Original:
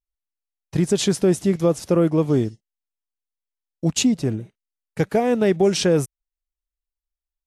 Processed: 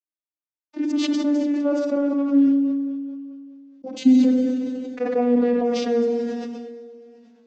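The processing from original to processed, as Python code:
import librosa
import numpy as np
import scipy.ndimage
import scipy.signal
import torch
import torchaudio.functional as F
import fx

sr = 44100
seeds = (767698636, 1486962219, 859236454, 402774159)

y = fx.vocoder_glide(x, sr, note=63, semitones=-6)
y = scipy.signal.sosfilt(scipy.signal.butter(4, 6100.0, 'lowpass', fs=sr, output='sos'), y)
y = fx.hum_notches(y, sr, base_hz=50, count=6)
y = fx.echo_feedback(y, sr, ms=130, feedback_pct=56, wet_db=-22.5)
y = fx.rev_schroeder(y, sr, rt60_s=1.3, comb_ms=32, drr_db=5.5)
y = fx.sustainer(y, sr, db_per_s=25.0)
y = F.gain(torch.from_numpy(y), -1.5).numpy()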